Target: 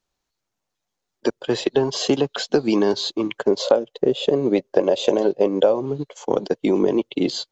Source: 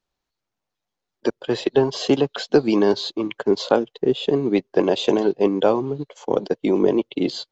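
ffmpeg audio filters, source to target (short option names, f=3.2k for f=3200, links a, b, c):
-filter_complex "[0:a]asettb=1/sr,asplit=3[a][b][c];[a]atrim=end=3.454[d];[b]atrim=start=3.45:end=5.86,asetpts=PTS-STARTPTS,afade=t=in:d=0.004:c=qsin,afade=t=out:st=2.406:d=0.004:c=qsin,equalizer=f=560:t=o:w=0.46:g=12[e];[c]atrim=start=5.856[f];[d][e]acrossfade=d=0.004:c1=hsin:c2=qsin[g];[g][f]acrossfade=d=0.004:c1=qsin:c2=hsin,acompressor=threshold=-15dB:ratio=5,equalizer=f=6.8k:t=o:w=0.72:g=5.5,volume=1.5dB"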